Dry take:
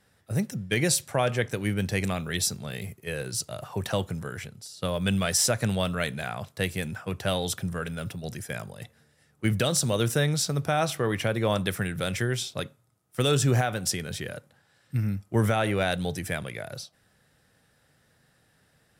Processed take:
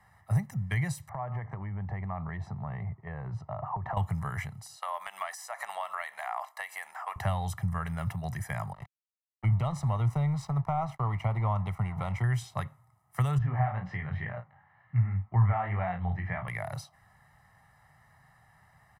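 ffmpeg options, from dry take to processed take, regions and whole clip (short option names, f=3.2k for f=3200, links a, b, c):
-filter_complex "[0:a]asettb=1/sr,asplit=3[a][b][c];[a]atrim=end=1.094[d];[b]atrim=start=1.09:end=3.97,asetpts=PTS-STARTPTS,afade=t=in:d=0.004:c=qsin,afade=t=out:st=2.876:d=0.004:c=qsin,lowpass=1.1k,acompressor=threshold=-34dB:ratio=8:attack=3.2:release=140:knee=1:detection=peak[e];[c]atrim=start=3.966[f];[d][e]acrossfade=d=0.004:c1=hsin:c2=qsin[g];[g][f]acrossfade=d=0.004:c1=qsin:c2=hsin,asettb=1/sr,asplit=3[h][i][j];[h]atrim=end=4.764[k];[i]atrim=start=4.76:end=7.16,asetpts=PTS-STARTPTS,afade=t=in:d=0.004:c=qsin,afade=t=out:st=2.396:d=0.004:c=qsin,highpass=f=630:w=0.5412,highpass=f=630:w=1.3066,acompressor=threshold=-36dB:ratio=3:attack=3.2:release=140:knee=1:detection=peak[l];[j]atrim=start=7.156[m];[k][l]acrossfade=d=0.004:c1=hsin:c2=qsin[n];[n][m]acrossfade=d=0.004:c1=qsin:c2=hsin,asettb=1/sr,asplit=3[o][p][q];[o]atrim=end=8.734[r];[p]atrim=start=8.73:end=12.24,asetpts=PTS-STARTPTS,afade=t=in:d=0.004:c=qsin,afade=t=out:st=3.506:d=0.004:c=qsin,asuperstop=centerf=1700:order=4:qfactor=2.9,aeval=exprs='sgn(val(0))*max(abs(val(0))-0.00841,0)':c=same,aemphasis=mode=reproduction:type=75kf[s];[q]atrim=start=12.236[t];[r][s]acrossfade=d=0.004:c1=hsin:c2=qsin[u];[u][t]acrossfade=d=0.004:c1=qsin:c2=hsin,asettb=1/sr,asplit=3[v][w][x];[v]atrim=end=13.384[y];[w]atrim=start=13.38:end=16.48,asetpts=PTS-STARTPTS,afade=t=in:d=0.004:c=qsin,afade=t=out:st=3.096:d=0.004:c=qsin,lowpass=f=2.6k:w=0.5412,lowpass=f=2.6k:w=1.3066,flanger=delay=16.5:depth=5.8:speed=2,asplit=2[z][aa];[aa]adelay=33,volume=-9dB[ab];[z][ab]amix=inputs=2:normalize=0,atrim=end_sample=136710[ac];[x]atrim=start=16.476[ad];[y][ac]acrossfade=d=0.004:c1=hsin:c2=qsin[ae];[ae][ad]acrossfade=d=0.004:c1=qsin:c2=hsin,aecho=1:1:1:0.78,acrossover=split=140[af][ag];[ag]acompressor=threshold=-34dB:ratio=6[ah];[af][ah]amix=inputs=2:normalize=0,firequalizer=gain_entry='entry(130,0);entry(280,-14);entry(490,1);entry(790,7);entry(2100,1);entry(3100,-11);entry(14000,-5)':delay=0.05:min_phase=1,volume=1dB"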